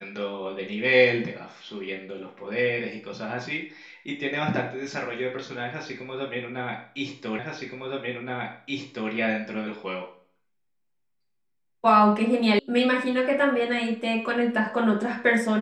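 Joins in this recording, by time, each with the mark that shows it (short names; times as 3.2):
7.39 repeat of the last 1.72 s
12.59 sound cut off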